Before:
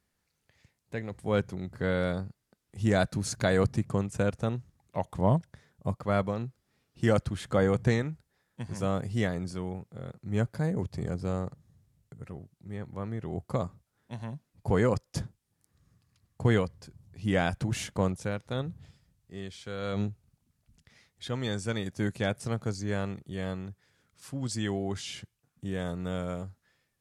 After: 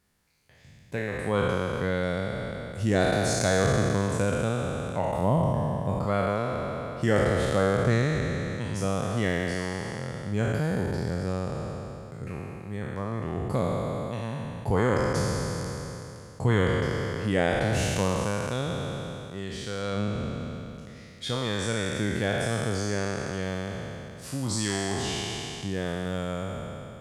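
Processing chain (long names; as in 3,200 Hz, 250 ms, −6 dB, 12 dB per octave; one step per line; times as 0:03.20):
peak hold with a decay on every bin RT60 2.69 s
in parallel at +3 dB: downward compressor, threshold −32 dBFS, peak gain reduction 14.5 dB
on the sum: level −4 dB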